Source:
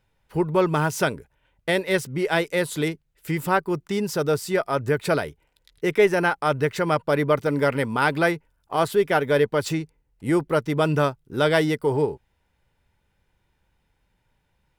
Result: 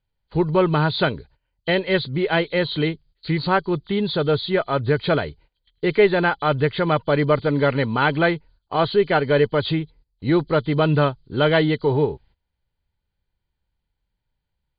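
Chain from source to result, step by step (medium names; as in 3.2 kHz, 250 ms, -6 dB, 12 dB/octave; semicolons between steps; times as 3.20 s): knee-point frequency compression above 3 kHz 4:1; gate -52 dBFS, range -16 dB; bass shelf 110 Hz +9.5 dB; trim +1.5 dB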